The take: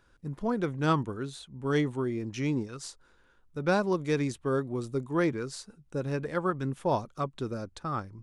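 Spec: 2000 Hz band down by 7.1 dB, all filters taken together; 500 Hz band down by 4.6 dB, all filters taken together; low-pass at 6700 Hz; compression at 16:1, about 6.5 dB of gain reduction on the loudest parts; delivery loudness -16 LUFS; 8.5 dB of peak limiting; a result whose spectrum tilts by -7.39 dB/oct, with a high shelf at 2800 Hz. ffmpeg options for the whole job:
-af "lowpass=6.7k,equalizer=f=500:t=o:g=-5.5,equalizer=f=2k:t=o:g=-8.5,highshelf=f=2.8k:g=-4,acompressor=threshold=-30dB:ratio=16,volume=25dB,alimiter=limit=-6dB:level=0:latency=1"

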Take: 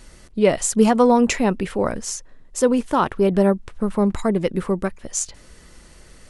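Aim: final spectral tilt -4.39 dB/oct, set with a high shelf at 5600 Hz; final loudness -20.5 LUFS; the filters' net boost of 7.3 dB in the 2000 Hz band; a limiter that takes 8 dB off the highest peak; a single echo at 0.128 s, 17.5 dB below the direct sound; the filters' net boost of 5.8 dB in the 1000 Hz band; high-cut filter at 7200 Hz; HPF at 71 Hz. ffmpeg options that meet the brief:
-af "highpass=71,lowpass=7.2k,equalizer=f=1k:t=o:g=5.5,equalizer=f=2k:t=o:g=6.5,highshelf=f=5.6k:g=7.5,alimiter=limit=-9.5dB:level=0:latency=1,aecho=1:1:128:0.133,volume=0.5dB"

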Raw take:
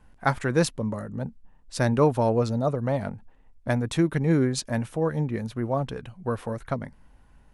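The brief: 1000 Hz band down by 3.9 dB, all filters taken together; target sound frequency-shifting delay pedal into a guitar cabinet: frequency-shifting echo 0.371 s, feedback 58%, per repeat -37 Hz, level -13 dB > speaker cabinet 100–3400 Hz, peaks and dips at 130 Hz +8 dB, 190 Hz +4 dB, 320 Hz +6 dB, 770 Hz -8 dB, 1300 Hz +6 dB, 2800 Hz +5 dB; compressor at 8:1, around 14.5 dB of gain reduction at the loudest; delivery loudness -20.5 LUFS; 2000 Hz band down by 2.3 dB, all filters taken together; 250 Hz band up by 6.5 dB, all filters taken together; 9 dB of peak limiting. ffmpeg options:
-filter_complex "[0:a]equalizer=f=250:t=o:g=4,equalizer=f=1k:t=o:g=-3,equalizer=f=2k:t=o:g=-4.5,acompressor=threshold=-30dB:ratio=8,alimiter=level_in=3.5dB:limit=-24dB:level=0:latency=1,volume=-3.5dB,asplit=7[a][b][c][d][e][f][g];[b]adelay=371,afreqshift=-37,volume=-13dB[h];[c]adelay=742,afreqshift=-74,volume=-17.7dB[i];[d]adelay=1113,afreqshift=-111,volume=-22.5dB[j];[e]adelay=1484,afreqshift=-148,volume=-27.2dB[k];[f]adelay=1855,afreqshift=-185,volume=-31.9dB[l];[g]adelay=2226,afreqshift=-222,volume=-36.7dB[m];[a][h][i][j][k][l][m]amix=inputs=7:normalize=0,highpass=100,equalizer=f=130:t=q:w=4:g=8,equalizer=f=190:t=q:w=4:g=4,equalizer=f=320:t=q:w=4:g=6,equalizer=f=770:t=q:w=4:g=-8,equalizer=f=1.3k:t=q:w=4:g=6,equalizer=f=2.8k:t=q:w=4:g=5,lowpass=f=3.4k:w=0.5412,lowpass=f=3.4k:w=1.3066,volume=14.5dB"

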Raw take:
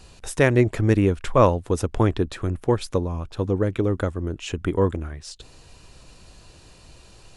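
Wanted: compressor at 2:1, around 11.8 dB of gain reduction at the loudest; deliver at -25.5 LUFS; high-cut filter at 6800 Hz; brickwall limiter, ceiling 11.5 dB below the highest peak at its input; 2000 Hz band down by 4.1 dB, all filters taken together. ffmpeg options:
-af "lowpass=6.8k,equalizer=f=2k:t=o:g=-5,acompressor=threshold=-34dB:ratio=2,volume=13dB,alimiter=limit=-14.5dB:level=0:latency=1"

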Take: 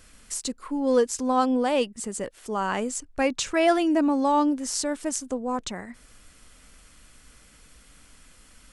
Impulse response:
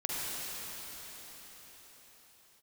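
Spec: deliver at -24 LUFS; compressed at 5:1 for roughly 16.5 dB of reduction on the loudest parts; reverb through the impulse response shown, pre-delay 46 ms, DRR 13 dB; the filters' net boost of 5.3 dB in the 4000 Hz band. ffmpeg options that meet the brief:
-filter_complex "[0:a]equalizer=f=4k:t=o:g=7,acompressor=threshold=-35dB:ratio=5,asplit=2[a][b];[1:a]atrim=start_sample=2205,adelay=46[c];[b][c]afir=irnorm=-1:irlink=0,volume=-20dB[d];[a][d]amix=inputs=2:normalize=0,volume=13dB"

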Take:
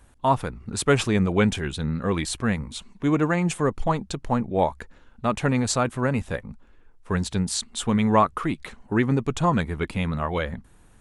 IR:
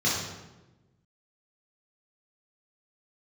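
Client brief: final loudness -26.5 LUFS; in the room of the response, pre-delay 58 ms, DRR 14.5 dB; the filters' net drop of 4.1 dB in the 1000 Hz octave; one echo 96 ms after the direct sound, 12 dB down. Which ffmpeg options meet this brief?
-filter_complex "[0:a]equalizer=f=1k:t=o:g=-5,aecho=1:1:96:0.251,asplit=2[a][b];[1:a]atrim=start_sample=2205,adelay=58[c];[b][c]afir=irnorm=-1:irlink=0,volume=-27dB[d];[a][d]amix=inputs=2:normalize=0,volume=-1.5dB"

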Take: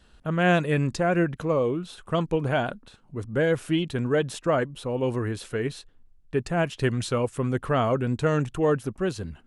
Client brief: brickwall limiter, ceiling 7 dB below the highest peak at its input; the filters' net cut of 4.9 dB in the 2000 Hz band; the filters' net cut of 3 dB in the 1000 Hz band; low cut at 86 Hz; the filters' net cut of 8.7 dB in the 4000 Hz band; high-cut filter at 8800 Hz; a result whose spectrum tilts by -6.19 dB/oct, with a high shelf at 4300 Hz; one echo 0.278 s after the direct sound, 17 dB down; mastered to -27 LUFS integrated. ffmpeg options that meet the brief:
-af "highpass=86,lowpass=8.8k,equalizer=f=1k:t=o:g=-3,equalizer=f=2k:t=o:g=-3,equalizer=f=4k:t=o:g=-8,highshelf=f=4.3k:g=-5,alimiter=limit=-19.5dB:level=0:latency=1,aecho=1:1:278:0.141,volume=2.5dB"

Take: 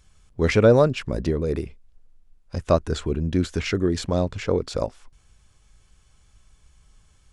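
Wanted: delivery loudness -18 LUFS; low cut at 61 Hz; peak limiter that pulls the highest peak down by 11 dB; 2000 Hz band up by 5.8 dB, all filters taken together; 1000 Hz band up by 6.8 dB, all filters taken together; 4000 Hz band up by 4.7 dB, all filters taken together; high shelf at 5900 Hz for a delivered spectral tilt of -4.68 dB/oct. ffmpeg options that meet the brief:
-af "highpass=61,equalizer=f=1k:t=o:g=7.5,equalizer=f=2k:t=o:g=4,equalizer=f=4k:t=o:g=6,highshelf=f=5.9k:g=-5,volume=7dB,alimiter=limit=-5dB:level=0:latency=1"

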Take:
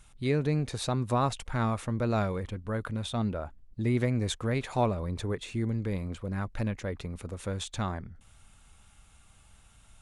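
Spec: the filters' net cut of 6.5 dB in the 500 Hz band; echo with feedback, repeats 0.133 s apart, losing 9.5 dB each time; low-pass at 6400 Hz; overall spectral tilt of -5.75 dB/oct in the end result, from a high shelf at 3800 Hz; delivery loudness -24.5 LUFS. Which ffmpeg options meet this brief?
-af "lowpass=6.4k,equalizer=f=500:t=o:g=-8.5,highshelf=f=3.8k:g=4,aecho=1:1:133|266|399|532:0.335|0.111|0.0365|0.012,volume=8dB"

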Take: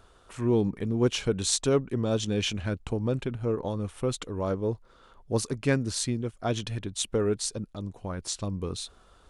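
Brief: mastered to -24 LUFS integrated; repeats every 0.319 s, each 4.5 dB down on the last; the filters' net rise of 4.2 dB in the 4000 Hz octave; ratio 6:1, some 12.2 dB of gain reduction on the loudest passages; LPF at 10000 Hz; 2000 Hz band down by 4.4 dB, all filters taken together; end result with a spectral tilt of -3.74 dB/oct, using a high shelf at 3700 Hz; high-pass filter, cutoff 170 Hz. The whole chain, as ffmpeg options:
-af "highpass=170,lowpass=10k,equalizer=f=2k:t=o:g=-9,highshelf=f=3.7k:g=5,equalizer=f=4k:t=o:g=4.5,acompressor=threshold=-33dB:ratio=6,aecho=1:1:319|638|957|1276|1595|1914|2233|2552|2871:0.596|0.357|0.214|0.129|0.0772|0.0463|0.0278|0.0167|0.01,volume=12dB"

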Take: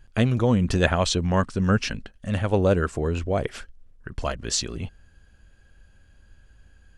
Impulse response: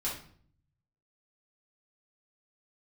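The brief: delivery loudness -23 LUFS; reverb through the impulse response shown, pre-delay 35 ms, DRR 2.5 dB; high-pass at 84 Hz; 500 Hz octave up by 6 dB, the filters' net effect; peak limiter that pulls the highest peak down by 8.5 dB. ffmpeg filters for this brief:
-filter_complex "[0:a]highpass=84,equalizer=f=500:t=o:g=7,alimiter=limit=-11.5dB:level=0:latency=1,asplit=2[a][b];[1:a]atrim=start_sample=2205,adelay=35[c];[b][c]afir=irnorm=-1:irlink=0,volume=-6.5dB[d];[a][d]amix=inputs=2:normalize=0,volume=-0.5dB"

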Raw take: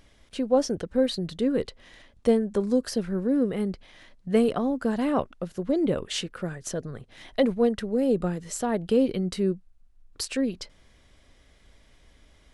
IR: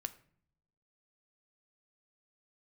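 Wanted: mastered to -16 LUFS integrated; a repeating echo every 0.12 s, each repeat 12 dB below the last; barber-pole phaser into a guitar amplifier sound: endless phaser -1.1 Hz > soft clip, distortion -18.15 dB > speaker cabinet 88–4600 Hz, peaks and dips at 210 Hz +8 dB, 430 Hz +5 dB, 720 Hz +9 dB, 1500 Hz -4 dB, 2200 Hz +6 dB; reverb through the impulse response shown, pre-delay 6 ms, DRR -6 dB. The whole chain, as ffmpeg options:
-filter_complex "[0:a]aecho=1:1:120|240|360:0.251|0.0628|0.0157,asplit=2[a][b];[1:a]atrim=start_sample=2205,adelay=6[c];[b][c]afir=irnorm=-1:irlink=0,volume=8dB[d];[a][d]amix=inputs=2:normalize=0,asplit=2[e][f];[f]afreqshift=-1.1[g];[e][g]amix=inputs=2:normalize=1,asoftclip=threshold=-11.5dB,highpass=88,equalizer=f=210:t=q:w=4:g=8,equalizer=f=430:t=q:w=4:g=5,equalizer=f=720:t=q:w=4:g=9,equalizer=f=1.5k:t=q:w=4:g=-4,equalizer=f=2.2k:t=q:w=4:g=6,lowpass=f=4.6k:w=0.5412,lowpass=f=4.6k:w=1.3066,volume=4dB"

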